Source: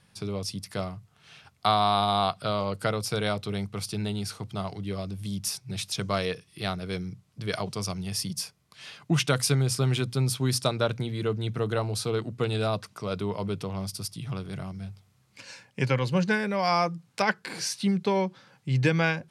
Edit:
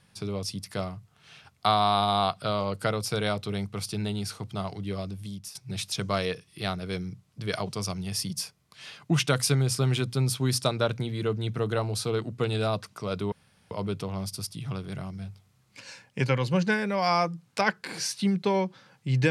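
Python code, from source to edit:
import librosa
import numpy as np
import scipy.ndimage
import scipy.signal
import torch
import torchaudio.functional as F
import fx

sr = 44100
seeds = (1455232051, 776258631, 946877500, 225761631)

y = fx.edit(x, sr, fx.fade_out_to(start_s=5.04, length_s=0.51, floor_db=-15.5),
    fx.insert_room_tone(at_s=13.32, length_s=0.39), tone=tone)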